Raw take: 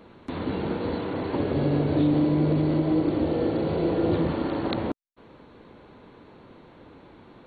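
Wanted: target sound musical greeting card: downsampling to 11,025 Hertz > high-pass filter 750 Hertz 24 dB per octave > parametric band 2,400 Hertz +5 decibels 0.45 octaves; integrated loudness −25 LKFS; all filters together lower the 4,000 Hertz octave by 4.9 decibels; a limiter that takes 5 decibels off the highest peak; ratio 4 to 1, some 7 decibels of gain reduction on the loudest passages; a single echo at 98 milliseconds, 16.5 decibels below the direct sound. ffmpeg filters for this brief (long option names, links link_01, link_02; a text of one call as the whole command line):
ffmpeg -i in.wav -af "equalizer=frequency=4000:width_type=o:gain=-7.5,acompressor=threshold=-27dB:ratio=4,alimiter=limit=-24dB:level=0:latency=1,aecho=1:1:98:0.15,aresample=11025,aresample=44100,highpass=frequency=750:width=0.5412,highpass=frequency=750:width=1.3066,equalizer=frequency=2400:width_type=o:width=0.45:gain=5,volume=19.5dB" out.wav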